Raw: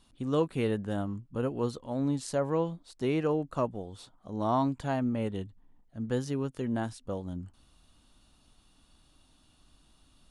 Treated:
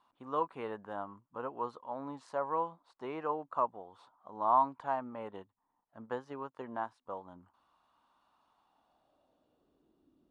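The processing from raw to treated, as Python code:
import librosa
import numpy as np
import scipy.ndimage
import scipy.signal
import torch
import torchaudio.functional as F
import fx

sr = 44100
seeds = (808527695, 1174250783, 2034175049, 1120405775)

y = fx.transient(x, sr, attack_db=4, sustain_db=-5, at=(5.28, 7.06))
y = fx.filter_sweep_bandpass(y, sr, from_hz=1000.0, to_hz=340.0, start_s=8.48, end_s=10.07, q=3.2)
y = F.gain(torch.from_numpy(y), 6.0).numpy()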